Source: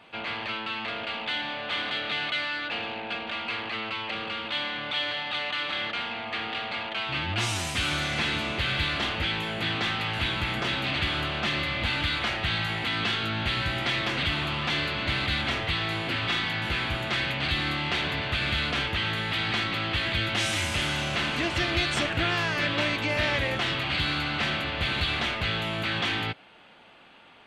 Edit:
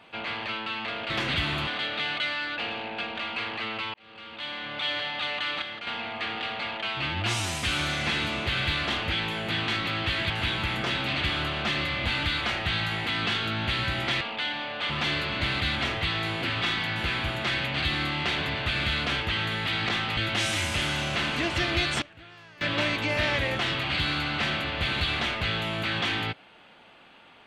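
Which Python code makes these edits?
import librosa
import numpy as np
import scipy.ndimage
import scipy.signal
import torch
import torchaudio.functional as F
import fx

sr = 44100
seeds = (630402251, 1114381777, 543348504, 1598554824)

y = fx.edit(x, sr, fx.swap(start_s=1.1, length_s=0.69, other_s=13.99, other_length_s=0.57),
    fx.fade_in_span(start_s=4.06, length_s=0.98),
    fx.clip_gain(start_s=5.74, length_s=0.25, db=-6.5),
    fx.swap(start_s=9.8, length_s=0.28, other_s=19.55, other_length_s=0.62),
    fx.fade_down_up(start_s=21.87, length_s=0.89, db=-22.5, fade_s=0.15, curve='log'), tone=tone)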